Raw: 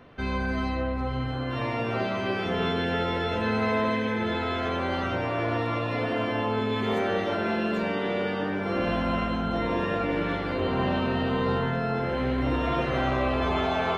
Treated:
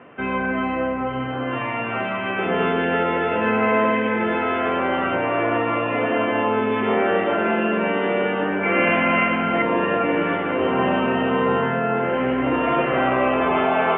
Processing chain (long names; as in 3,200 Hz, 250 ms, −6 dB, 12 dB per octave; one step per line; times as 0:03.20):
high-pass filter 200 Hz 12 dB per octave
0:08.63–0:09.62: parametric band 2,200 Hz +13.5 dB 0.53 octaves
elliptic low-pass filter 2,900 Hz, stop band 40 dB
0:01.58–0:02.38: parametric band 420 Hz −9 dB 1.3 octaves
level +8 dB